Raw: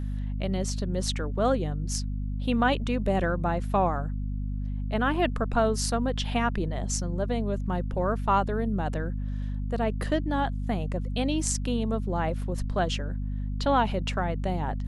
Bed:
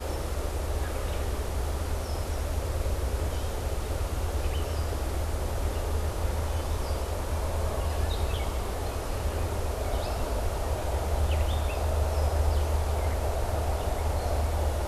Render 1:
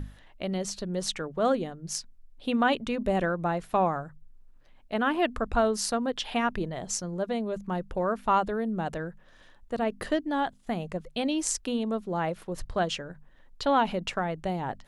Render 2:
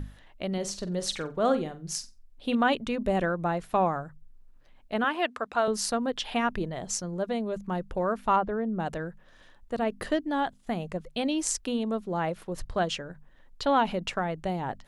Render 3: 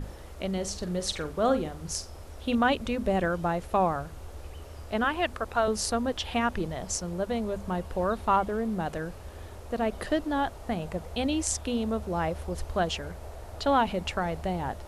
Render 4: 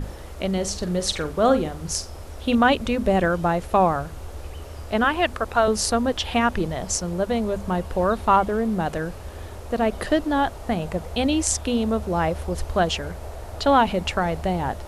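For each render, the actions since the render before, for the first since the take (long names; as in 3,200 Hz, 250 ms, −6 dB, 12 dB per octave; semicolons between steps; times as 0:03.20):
mains-hum notches 50/100/150/200/250 Hz
0:00.53–0:02.55: flutter between parallel walls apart 7.8 metres, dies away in 0.24 s; 0:05.04–0:05.68: meter weighting curve A; 0:08.36–0:08.80: low-pass filter 1,900 Hz
mix in bed −13.5 dB
level +6.5 dB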